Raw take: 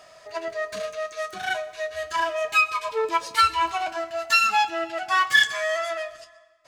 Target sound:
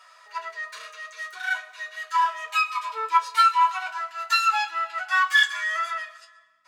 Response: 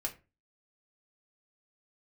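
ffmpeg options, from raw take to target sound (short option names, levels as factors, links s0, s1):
-filter_complex "[0:a]aeval=exprs='val(0)+0.00178*(sin(2*PI*60*n/s)+sin(2*PI*2*60*n/s)/2+sin(2*PI*3*60*n/s)/3+sin(2*PI*4*60*n/s)/4+sin(2*PI*5*60*n/s)/5)':c=same,highpass=f=1200:t=q:w=1.9[s0];[1:a]atrim=start_sample=2205,asetrate=70560,aresample=44100[s1];[s0][s1]afir=irnorm=-1:irlink=0"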